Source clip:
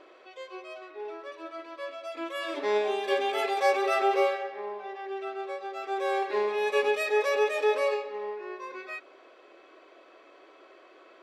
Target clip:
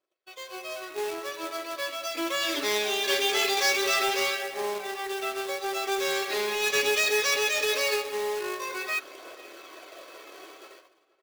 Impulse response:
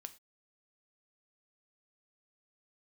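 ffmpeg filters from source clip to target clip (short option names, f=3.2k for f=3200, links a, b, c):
-filter_complex "[0:a]bandreject=f=259.5:t=h:w=4,bandreject=f=519:t=h:w=4,bandreject=f=778.5:t=h:w=4,bandreject=f=1.038k:t=h:w=4,bandreject=f=1.2975k:t=h:w=4,bandreject=f=1.557k:t=h:w=4,bandreject=f=1.8165k:t=h:w=4,bandreject=f=2.076k:t=h:w=4,bandreject=f=2.3355k:t=h:w=4,bandreject=f=2.595k:t=h:w=4,bandreject=f=2.8545k:t=h:w=4,bandreject=f=3.114k:t=h:w=4,bandreject=f=3.3735k:t=h:w=4,bandreject=f=3.633k:t=h:w=4,bandreject=f=3.8925k:t=h:w=4,bandreject=f=4.152k:t=h:w=4,bandreject=f=4.4115k:t=h:w=4,bandreject=f=4.671k:t=h:w=4,bandreject=f=4.9305k:t=h:w=4,acrossover=split=350|1400[a][b][c];[b]acompressor=threshold=-41dB:ratio=12[d];[a][d][c]amix=inputs=3:normalize=0,bass=f=250:g=5,treble=f=4k:g=14,dynaudnorm=f=160:g=9:m=6.5dB,agate=range=-37dB:threshold=-48dB:ratio=16:detection=peak,aresample=16000,asoftclip=type=tanh:threshold=-20dB,aresample=44100,aphaser=in_gain=1:out_gain=1:delay=2.8:decay=0.28:speed=0.43:type=triangular,acrusher=bits=2:mode=log:mix=0:aa=0.000001,lowshelf=f=240:g=-9,asplit=2[e][f];[f]adelay=478.1,volume=-20dB,highshelf=f=4k:g=-10.8[g];[e][g]amix=inputs=2:normalize=0,volume=1.5dB"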